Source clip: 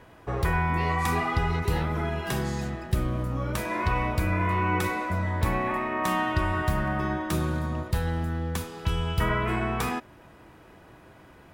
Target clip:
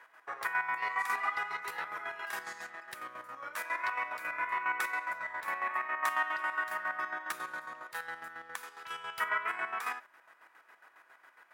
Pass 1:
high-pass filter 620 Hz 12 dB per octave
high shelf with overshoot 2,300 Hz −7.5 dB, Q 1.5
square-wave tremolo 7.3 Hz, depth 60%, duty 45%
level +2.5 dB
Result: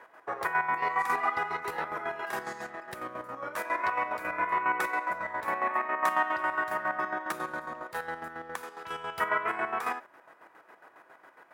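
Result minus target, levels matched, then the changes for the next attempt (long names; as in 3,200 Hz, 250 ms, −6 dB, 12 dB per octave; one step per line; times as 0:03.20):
500 Hz band +7.5 dB
change: high-pass filter 1,400 Hz 12 dB per octave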